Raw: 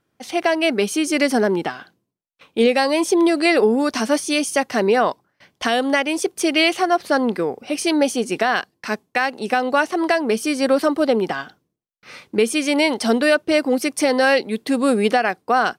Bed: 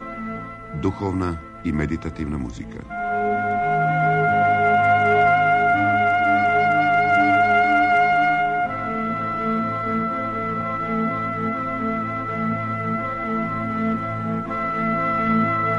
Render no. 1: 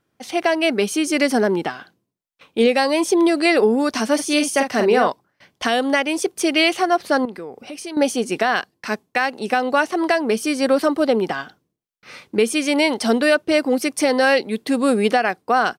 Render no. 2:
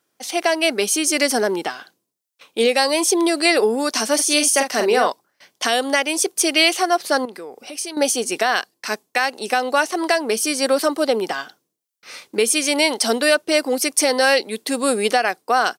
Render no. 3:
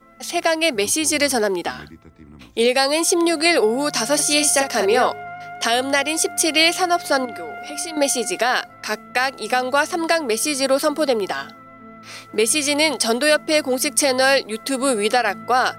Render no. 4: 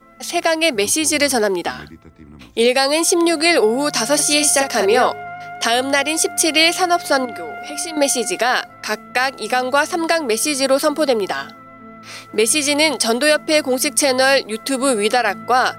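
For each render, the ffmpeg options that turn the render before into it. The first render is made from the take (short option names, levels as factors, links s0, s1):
-filter_complex "[0:a]asplit=3[s0][s1][s2];[s0]afade=t=out:st=4.18:d=0.02[s3];[s1]asplit=2[s4][s5];[s5]adelay=44,volume=0.501[s6];[s4][s6]amix=inputs=2:normalize=0,afade=t=in:st=4.18:d=0.02,afade=t=out:st=5.07:d=0.02[s7];[s2]afade=t=in:st=5.07:d=0.02[s8];[s3][s7][s8]amix=inputs=3:normalize=0,asettb=1/sr,asplit=3[s9][s10][s11];[s9]atrim=end=7.254[s12];[s10]atrim=start=7.25:end=7.97,asetpts=PTS-STARTPTS,afade=t=in:d=0.004:c=qsin,afade=t=out:st=0.716:d=0.004:c=qsin,acompressor=threshold=0.02:ratio=2.5:attack=3.2:release=140:knee=1:detection=peak[s13];[s11]atrim=start=7.966[s14];[s12][s13]acrossfade=d=0.004:c1=hsin:c2=qsin[s15];[s15][s14]acrossfade=d=0.004:c1=qsin:c2=hsin"
-af "highpass=110,bass=f=250:g=-11,treble=f=4000:g=10"
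-filter_complex "[1:a]volume=0.133[s0];[0:a][s0]amix=inputs=2:normalize=0"
-af "volume=1.33,alimiter=limit=0.708:level=0:latency=1"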